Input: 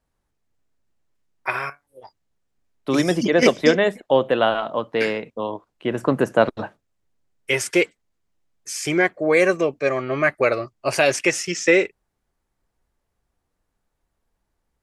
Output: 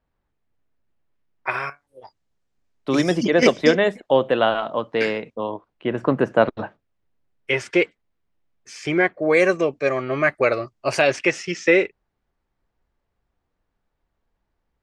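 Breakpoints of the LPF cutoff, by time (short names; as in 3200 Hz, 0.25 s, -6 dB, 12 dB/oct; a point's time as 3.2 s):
3300 Hz
from 1.51 s 7200 Hz
from 5.36 s 3500 Hz
from 9.23 s 7300 Hz
from 11.02 s 4000 Hz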